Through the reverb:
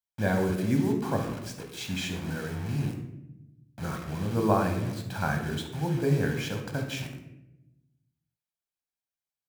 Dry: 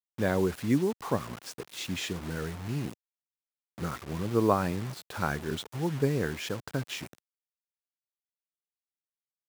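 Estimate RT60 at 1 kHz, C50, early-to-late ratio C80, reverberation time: 0.75 s, 6.0 dB, 9.5 dB, 0.90 s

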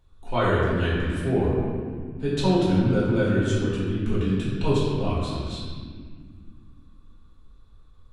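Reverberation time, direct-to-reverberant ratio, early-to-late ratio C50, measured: 1.9 s, -9.5 dB, -2.0 dB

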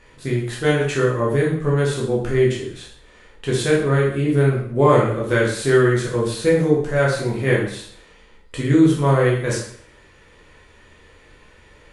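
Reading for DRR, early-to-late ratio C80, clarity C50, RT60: -5.0 dB, 8.0 dB, 4.0 dB, 0.60 s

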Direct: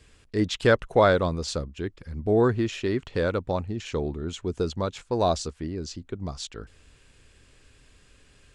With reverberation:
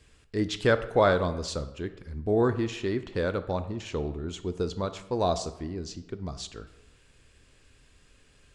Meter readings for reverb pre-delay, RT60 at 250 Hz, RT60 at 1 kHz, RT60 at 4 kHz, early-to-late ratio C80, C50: 15 ms, 0.90 s, 1.0 s, 0.65 s, 15.5 dB, 13.0 dB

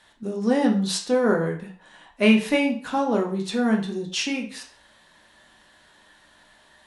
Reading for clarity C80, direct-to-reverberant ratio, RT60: 13.5 dB, 0.5 dB, 0.40 s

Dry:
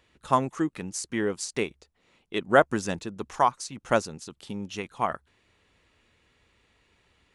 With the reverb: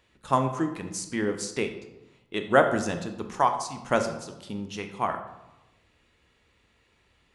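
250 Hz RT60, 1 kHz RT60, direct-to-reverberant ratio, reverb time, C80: 1.1 s, 0.95 s, 6.0 dB, 0.95 s, 11.5 dB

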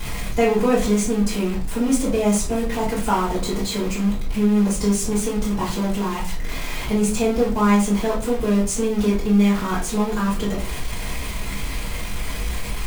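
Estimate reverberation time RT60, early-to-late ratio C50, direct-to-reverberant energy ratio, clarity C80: 0.40 s, 8.0 dB, -7.0 dB, 13.0 dB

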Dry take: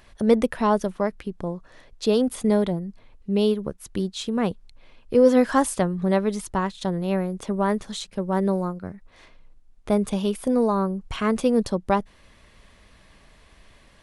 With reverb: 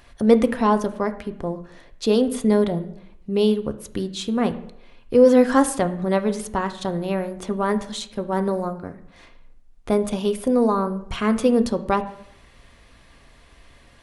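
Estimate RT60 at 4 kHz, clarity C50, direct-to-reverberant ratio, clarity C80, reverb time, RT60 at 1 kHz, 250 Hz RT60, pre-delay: 0.60 s, 14.0 dB, 7.5 dB, 17.0 dB, 0.75 s, 0.75 s, 0.65 s, 3 ms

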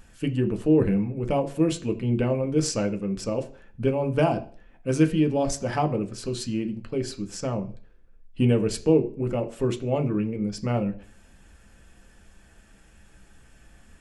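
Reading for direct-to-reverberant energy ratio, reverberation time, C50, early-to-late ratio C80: 4.0 dB, 0.45 s, 15.0 dB, 19.5 dB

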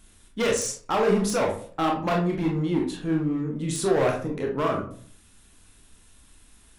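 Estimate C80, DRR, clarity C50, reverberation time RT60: 12.0 dB, -0.5 dB, 5.5 dB, 0.50 s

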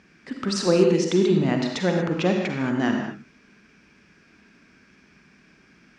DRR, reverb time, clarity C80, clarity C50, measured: 2.0 dB, no single decay rate, 4.5 dB, 2.5 dB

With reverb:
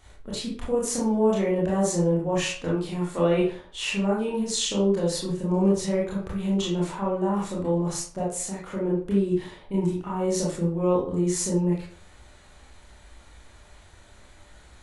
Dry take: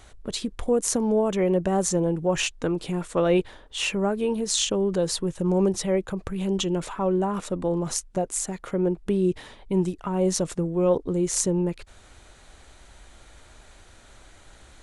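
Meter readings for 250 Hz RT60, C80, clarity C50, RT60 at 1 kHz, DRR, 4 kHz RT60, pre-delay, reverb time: 0.50 s, 8.5 dB, 2.0 dB, 0.50 s, -6.5 dB, 0.35 s, 23 ms, 0.50 s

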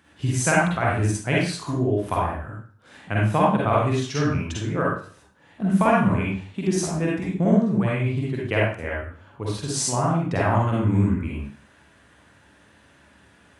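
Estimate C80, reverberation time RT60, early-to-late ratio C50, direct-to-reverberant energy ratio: 4.5 dB, 0.45 s, -2.0 dB, -5.5 dB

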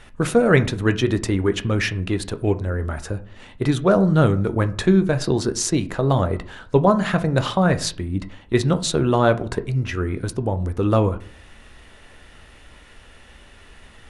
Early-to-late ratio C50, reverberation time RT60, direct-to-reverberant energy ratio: 17.0 dB, 0.45 s, 9.0 dB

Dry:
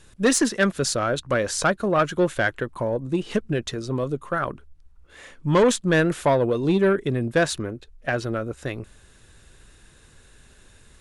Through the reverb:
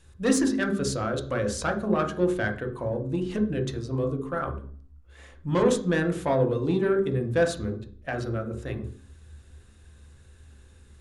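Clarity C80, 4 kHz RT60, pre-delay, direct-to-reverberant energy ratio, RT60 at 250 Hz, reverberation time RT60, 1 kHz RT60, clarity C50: 13.5 dB, 0.40 s, 3 ms, 3.0 dB, 0.85 s, 0.50 s, 0.45 s, 9.0 dB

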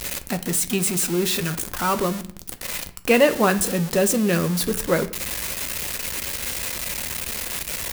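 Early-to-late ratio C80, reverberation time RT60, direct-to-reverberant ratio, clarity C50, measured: 19.0 dB, 0.60 s, 8.0 dB, 15.5 dB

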